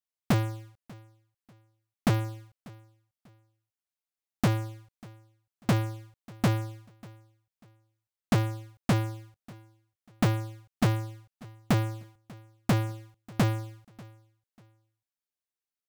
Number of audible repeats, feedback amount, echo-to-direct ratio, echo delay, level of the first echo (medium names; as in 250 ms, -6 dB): 2, 30%, -22.5 dB, 592 ms, -23.0 dB